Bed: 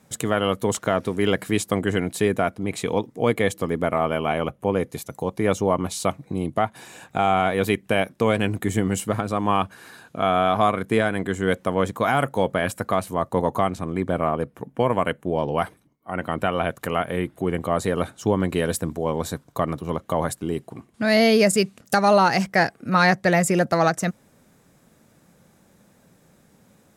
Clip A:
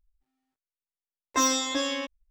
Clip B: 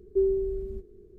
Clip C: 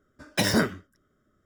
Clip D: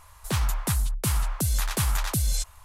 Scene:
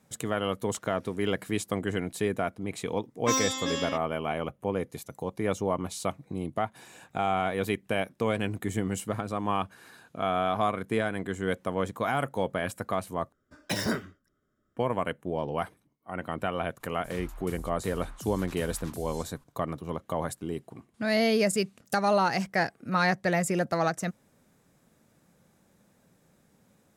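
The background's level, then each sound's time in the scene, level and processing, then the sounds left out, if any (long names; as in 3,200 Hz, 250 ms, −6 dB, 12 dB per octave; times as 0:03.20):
bed −7.5 dB
0:01.91: mix in A −3.5 dB
0:13.32: overwrite with C −6.5 dB
0:16.80: mix in D −14 dB + brickwall limiter −20.5 dBFS
not used: B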